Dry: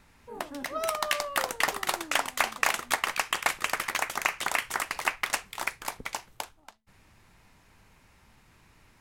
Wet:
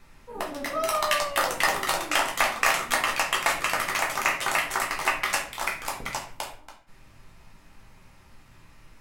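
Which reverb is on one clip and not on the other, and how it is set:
rectangular room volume 56 cubic metres, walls mixed, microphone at 0.78 metres

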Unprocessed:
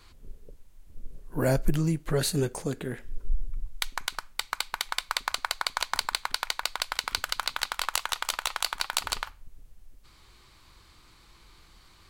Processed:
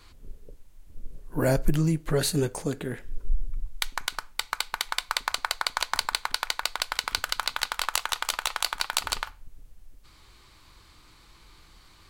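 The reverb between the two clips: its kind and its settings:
feedback delay network reverb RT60 0.31 s, low-frequency decay 0.95×, high-frequency decay 0.4×, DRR 18 dB
level +1.5 dB

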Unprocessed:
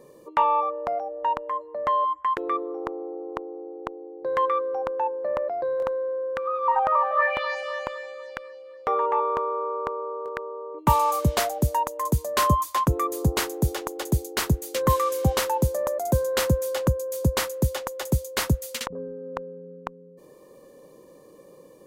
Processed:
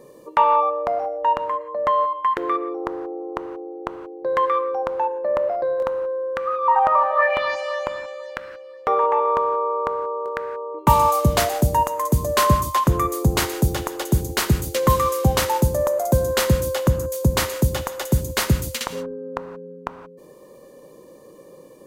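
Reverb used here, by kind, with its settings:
reverb whose tail is shaped and stops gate 200 ms flat, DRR 9.5 dB
level +4 dB

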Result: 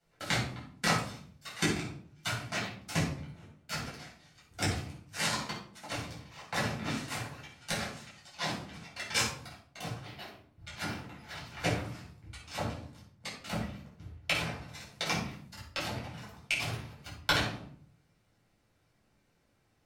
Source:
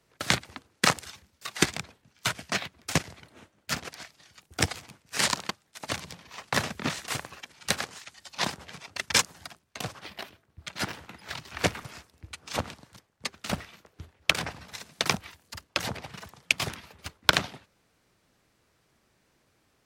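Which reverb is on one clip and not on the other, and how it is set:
rectangular room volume 670 cubic metres, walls furnished, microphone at 7.5 metres
level −14.5 dB

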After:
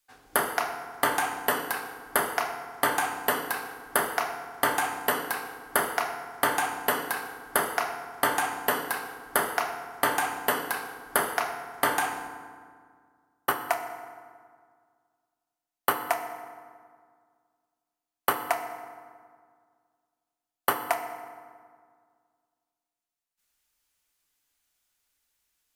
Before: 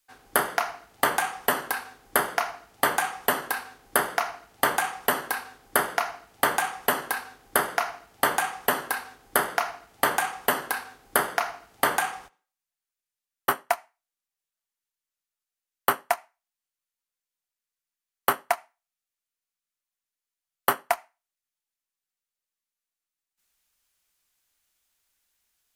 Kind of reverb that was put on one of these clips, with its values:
feedback delay network reverb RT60 1.9 s, low-frequency decay 1.2×, high-frequency decay 0.6×, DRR 5.5 dB
level −2.5 dB

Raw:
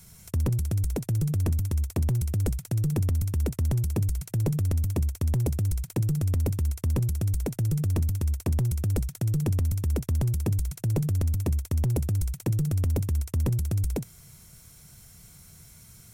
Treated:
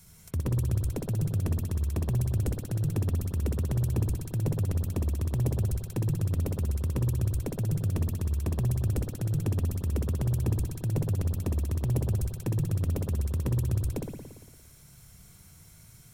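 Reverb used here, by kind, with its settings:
spring reverb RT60 1.3 s, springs 57 ms, chirp 25 ms, DRR 1.5 dB
level −4 dB

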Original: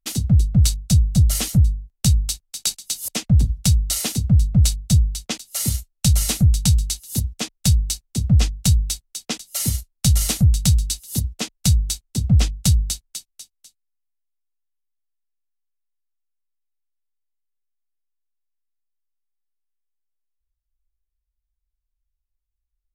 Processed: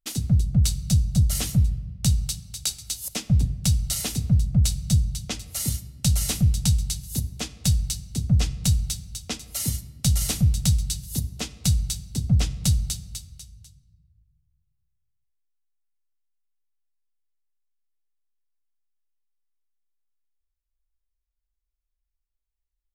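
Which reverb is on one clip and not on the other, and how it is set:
rectangular room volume 1,100 cubic metres, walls mixed, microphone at 0.34 metres
level −4.5 dB

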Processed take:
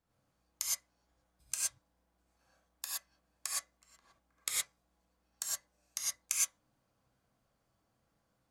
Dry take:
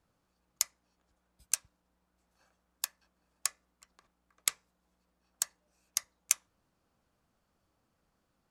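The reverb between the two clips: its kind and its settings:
reverb whose tail is shaped and stops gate 140 ms rising, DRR −6.5 dB
level −8.5 dB

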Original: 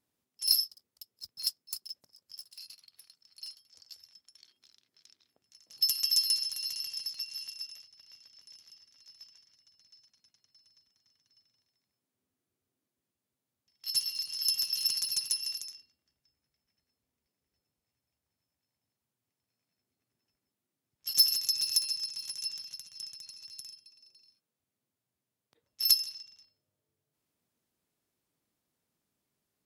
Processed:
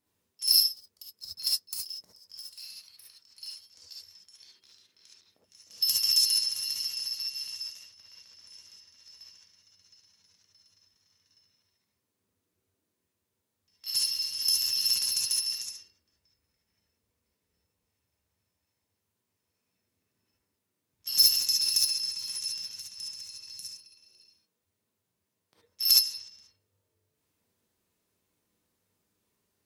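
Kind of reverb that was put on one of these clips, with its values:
reverb whose tail is shaped and stops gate 90 ms rising, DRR −4.5 dB

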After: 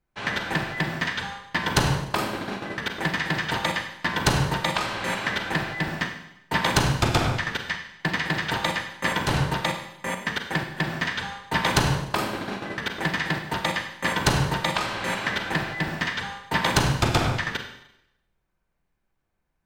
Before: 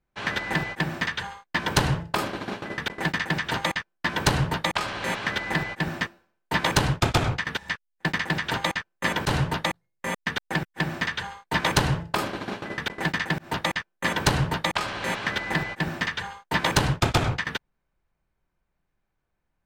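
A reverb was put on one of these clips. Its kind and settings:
four-comb reverb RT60 0.82 s, combs from 33 ms, DRR 5 dB

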